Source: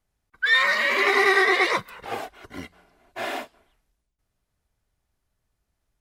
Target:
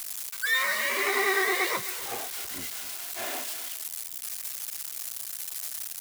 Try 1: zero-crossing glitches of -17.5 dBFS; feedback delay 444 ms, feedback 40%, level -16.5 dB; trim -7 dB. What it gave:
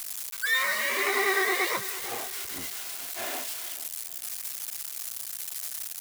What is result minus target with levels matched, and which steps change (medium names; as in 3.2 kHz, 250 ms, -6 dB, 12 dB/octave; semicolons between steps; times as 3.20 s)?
echo 183 ms late
change: feedback delay 261 ms, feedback 40%, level -16.5 dB